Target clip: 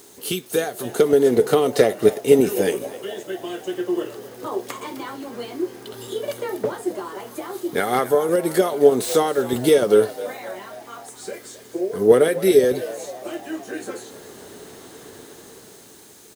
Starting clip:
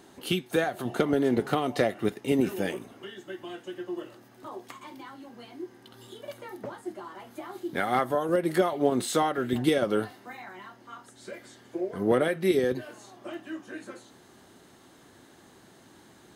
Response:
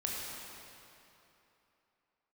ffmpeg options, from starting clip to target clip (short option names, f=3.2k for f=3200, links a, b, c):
-filter_complex "[0:a]equalizer=f=440:w=5.1:g=13.5,acrossover=split=5200[a][b];[a]dynaudnorm=f=270:g=9:m=11.5dB[c];[b]aeval=exprs='0.0596*sin(PI/2*4.47*val(0)/0.0596)':c=same[d];[c][d]amix=inputs=2:normalize=0,acrusher=bits=7:mix=0:aa=0.000001,asplit=6[e][f][g][h][i][j];[f]adelay=262,afreqshift=68,volume=-16.5dB[k];[g]adelay=524,afreqshift=136,volume=-21.2dB[l];[h]adelay=786,afreqshift=204,volume=-26dB[m];[i]adelay=1048,afreqshift=272,volume=-30.7dB[n];[j]adelay=1310,afreqshift=340,volume=-35.4dB[o];[e][k][l][m][n][o]amix=inputs=6:normalize=0,volume=-1dB"